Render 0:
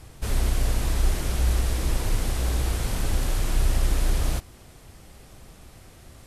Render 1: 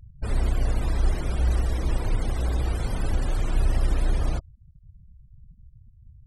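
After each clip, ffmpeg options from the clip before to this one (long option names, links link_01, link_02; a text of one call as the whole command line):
ffmpeg -i in.wav -af "afftfilt=real='re*gte(hypot(re,im),0.02)':imag='im*gte(hypot(re,im),0.02)':win_size=1024:overlap=0.75" out.wav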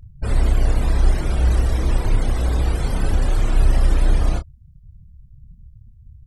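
ffmpeg -i in.wav -filter_complex "[0:a]asplit=2[link_01][link_02];[link_02]adelay=29,volume=-7.5dB[link_03];[link_01][link_03]amix=inputs=2:normalize=0,volume=5dB" out.wav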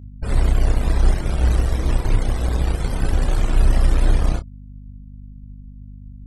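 ffmpeg -i in.wav -af "aeval=exprs='val(0)+0.0224*(sin(2*PI*50*n/s)+sin(2*PI*2*50*n/s)/2+sin(2*PI*3*50*n/s)/3+sin(2*PI*4*50*n/s)/4+sin(2*PI*5*50*n/s)/5)':channel_layout=same,aeval=exprs='0.631*(cos(1*acos(clip(val(0)/0.631,-1,1)))-cos(1*PI/2))+0.0316*(cos(7*acos(clip(val(0)/0.631,-1,1)))-cos(7*PI/2))':channel_layout=same" out.wav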